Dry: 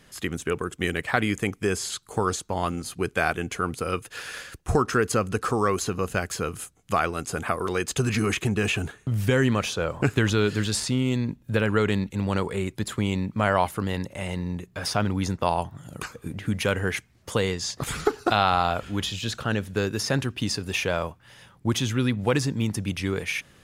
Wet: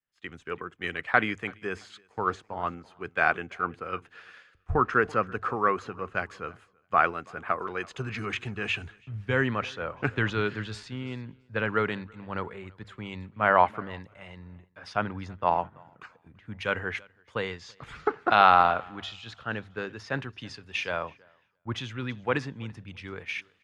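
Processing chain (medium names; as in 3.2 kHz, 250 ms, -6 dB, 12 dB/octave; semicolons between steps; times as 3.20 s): low-pass 1.6 kHz 12 dB/octave; tilt shelf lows -8 dB; hum notches 50/100 Hz; on a send: feedback delay 336 ms, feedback 40%, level -19 dB; on the sum: three bands expanded up and down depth 100%; trim -2 dB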